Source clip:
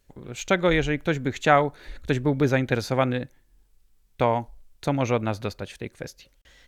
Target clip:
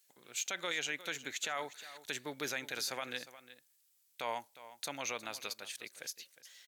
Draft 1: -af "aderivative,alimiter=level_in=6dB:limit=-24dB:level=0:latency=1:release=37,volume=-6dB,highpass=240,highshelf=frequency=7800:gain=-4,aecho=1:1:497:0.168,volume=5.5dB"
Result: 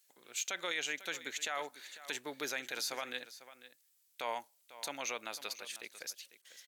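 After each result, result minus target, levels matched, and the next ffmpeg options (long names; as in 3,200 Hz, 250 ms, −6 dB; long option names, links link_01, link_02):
echo 139 ms late; 125 Hz band −7.5 dB
-af "aderivative,alimiter=level_in=6dB:limit=-24dB:level=0:latency=1:release=37,volume=-6dB,highpass=240,highshelf=frequency=7800:gain=-4,aecho=1:1:358:0.168,volume=5.5dB"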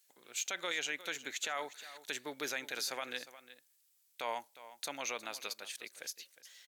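125 Hz band −7.5 dB
-af "aderivative,alimiter=level_in=6dB:limit=-24dB:level=0:latency=1:release=37,volume=-6dB,highpass=120,highshelf=frequency=7800:gain=-4,aecho=1:1:358:0.168,volume=5.5dB"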